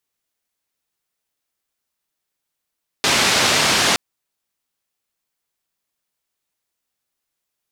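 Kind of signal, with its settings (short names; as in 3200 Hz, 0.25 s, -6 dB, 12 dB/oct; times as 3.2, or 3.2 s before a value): noise band 100–5100 Hz, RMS -16.5 dBFS 0.92 s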